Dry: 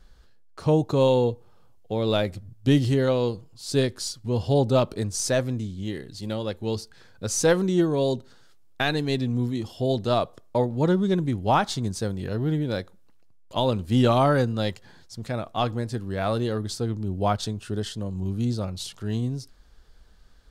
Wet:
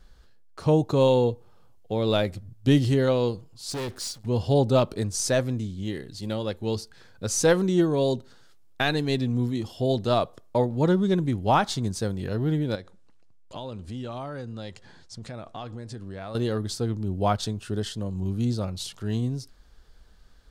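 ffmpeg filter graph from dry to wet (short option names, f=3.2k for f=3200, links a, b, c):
-filter_complex "[0:a]asettb=1/sr,asplit=3[a][b][c];[a]atrim=end=3.704[d];[b]atrim=start=3.7:end=4.26,asetpts=PTS-STARTPTS,afade=t=in:d=0.004:c=qsin,afade=t=out:st=0.556:d=0.004:c=qsin,acrusher=bits=7:mix=0:aa=0.5,asoftclip=type=hard:threshold=-29dB[e];[c]atrim=start=4.256[f];[d][e]acrossfade=d=0.004:c1=hsin:c2=qsin[g];[g][f]acrossfade=d=0.004:c1=qsin:c2=hsin,asettb=1/sr,asplit=3[h][i][j];[h]atrim=end=12.754[k];[i]atrim=start=12.75:end=16.35,asetpts=PTS-STARTPTS,afade=t=in:d=0.004:c=qsin,afade=t=out:st=3.596:d=0.004:c=qsin,lowpass=f=9.4k:w=0.5412,lowpass=f=9.4k:w=1.3066,acompressor=threshold=-35dB:ratio=4:attack=3.2:release=140:knee=1:detection=peak[l];[j]atrim=start=16.346[m];[k][l]acrossfade=d=0.004:c1=hsin:c2=qsin[n];[n][m]acrossfade=d=0.004:c1=qsin:c2=hsin"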